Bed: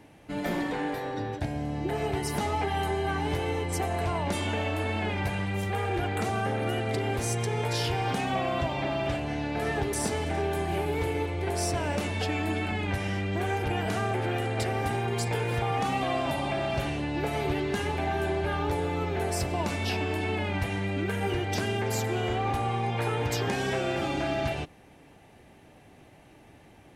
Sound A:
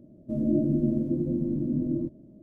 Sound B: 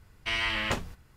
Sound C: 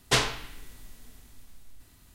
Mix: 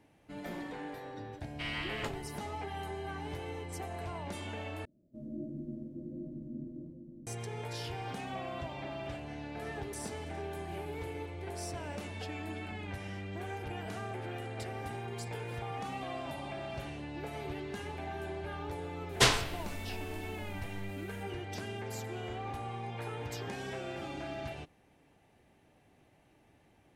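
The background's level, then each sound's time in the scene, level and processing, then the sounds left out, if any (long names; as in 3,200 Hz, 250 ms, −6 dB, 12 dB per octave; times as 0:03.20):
bed −11.5 dB
0:01.33: mix in B −9.5 dB + notch filter 5,900 Hz, Q 8.7
0:04.85: overwrite with A −17 dB + slap from a distant wall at 140 metres, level −6 dB
0:19.09: mix in C −1 dB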